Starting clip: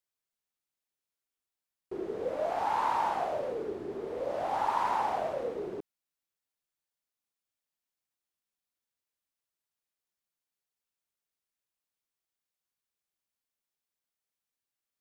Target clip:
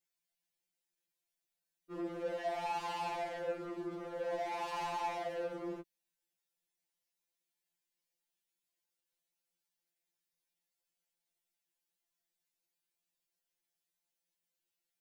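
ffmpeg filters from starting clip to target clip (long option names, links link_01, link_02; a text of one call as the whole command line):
ffmpeg -i in.wav -af "equalizer=frequency=1200:width_type=o:width=0.35:gain=-11,asoftclip=type=tanh:threshold=-37.5dB,afftfilt=real='re*2.83*eq(mod(b,8),0)':imag='im*2.83*eq(mod(b,8),0)':win_size=2048:overlap=0.75,volume=3.5dB" out.wav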